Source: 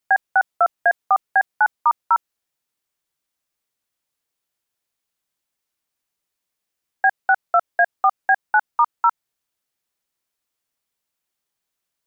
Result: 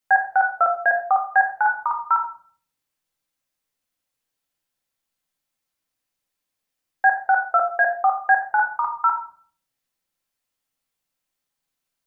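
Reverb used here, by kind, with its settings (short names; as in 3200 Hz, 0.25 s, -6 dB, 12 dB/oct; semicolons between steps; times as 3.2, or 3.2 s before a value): shoebox room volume 520 m³, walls furnished, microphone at 2.1 m; gain -3 dB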